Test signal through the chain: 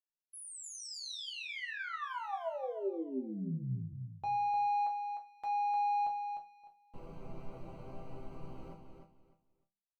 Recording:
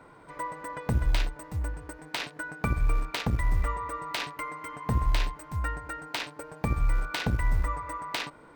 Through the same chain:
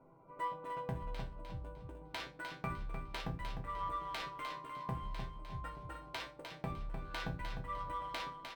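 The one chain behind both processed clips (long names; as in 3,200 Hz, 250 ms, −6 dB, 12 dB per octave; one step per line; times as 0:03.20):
adaptive Wiener filter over 25 samples
bass and treble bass +1 dB, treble −6 dB
mains-hum notches 50/100/150/200 Hz
downward compressor, threshold −28 dBFS
resonators tuned to a chord C3 major, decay 0.26 s
on a send: repeating echo 303 ms, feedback 23%, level −6.5 dB
on the sum: level +6.5 dB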